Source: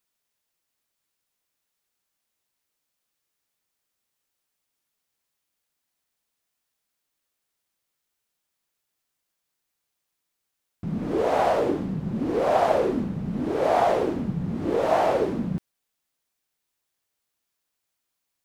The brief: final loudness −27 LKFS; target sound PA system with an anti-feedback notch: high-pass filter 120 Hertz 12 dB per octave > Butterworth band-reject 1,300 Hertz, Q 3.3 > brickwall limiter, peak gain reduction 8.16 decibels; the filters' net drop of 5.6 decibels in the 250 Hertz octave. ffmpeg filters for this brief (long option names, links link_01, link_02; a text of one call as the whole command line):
ffmpeg -i in.wav -af "highpass=120,asuperstop=centerf=1300:order=8:qfactor=3.3,equalizer=frequency=250:width_type=o:gain=-7.5,volume=1dB,alimiter=limit=-15.5dB:level=0:latency=1" out.wav